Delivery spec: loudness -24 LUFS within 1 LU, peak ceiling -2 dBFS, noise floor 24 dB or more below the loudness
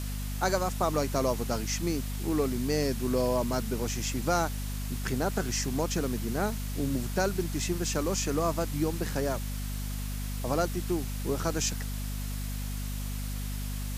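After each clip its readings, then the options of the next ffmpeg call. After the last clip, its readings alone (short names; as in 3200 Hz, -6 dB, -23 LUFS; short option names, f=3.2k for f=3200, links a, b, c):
hum 50 Hz; harmonics up to 250 Hz; hum level -32 dBFS; noise floor -34 dBFS; noise floor target -55 dBFS; loudness -31.0 LUFS; peak -11.5 dBFS; loudness target -24.0 LUFS
-> -af "bandreject=f=50:t=h:w=4,bandreject=f=100:t=h:w=4,bandreject=f=150:t=h:w=4,bandreject=f=200:t=h:w=4,bandreject=f=250:t=h:w=4"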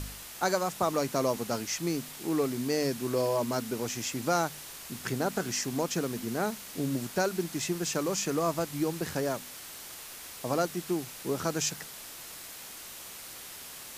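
hum none; noise floor -45 dBFS; noise floor target -56 dBFS
-> -af "afftdn=nr=11:nf=-45"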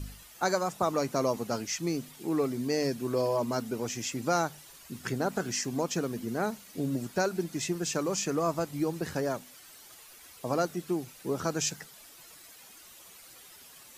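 noise floor -52 dBFS; noise floor target -56 dBFS
-> -af "afftdn=nr=6:nf=-52"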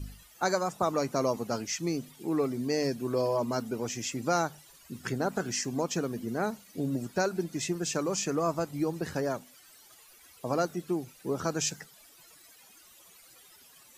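noise floor -57 dBFS; loudness -31.5 LUFS; peak -13.0 dBFS; loudness target -24.0 LUFS
-> -af "volume=7.5dB"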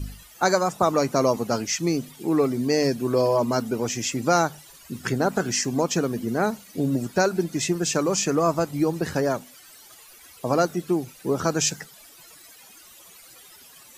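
loudness -24.0 LUFS; peak -5.5 dBFS; noise floor -49 dBFS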